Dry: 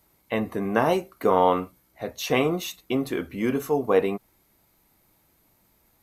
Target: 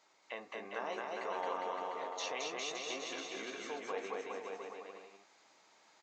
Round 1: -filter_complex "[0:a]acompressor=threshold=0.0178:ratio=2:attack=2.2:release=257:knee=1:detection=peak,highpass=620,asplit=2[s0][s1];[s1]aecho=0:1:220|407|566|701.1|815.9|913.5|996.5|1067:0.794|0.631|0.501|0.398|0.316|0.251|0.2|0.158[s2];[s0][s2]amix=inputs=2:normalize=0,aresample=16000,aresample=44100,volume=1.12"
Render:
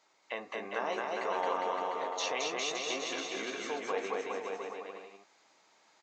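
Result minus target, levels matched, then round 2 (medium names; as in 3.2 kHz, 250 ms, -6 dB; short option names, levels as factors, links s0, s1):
compression: peak gain reduction -6 dB
-filter_complex "[0:a]acompressor=threshold=0.00473:ratio=2:attack=2.2:release=257:knee=1:detection=peak,highpass=620,asplit=2[s0][s1];[s1]aecho=0:1:220|407|566|701.1|815.9|913.5|996.5|1067:0.794|0.631|0.501|0.398|0.316|0.251|0.2|0.158[s2];[s0][s2]amix=inputs=2:normalize=0,aresample=16000,aresample=44100,volume=1.12"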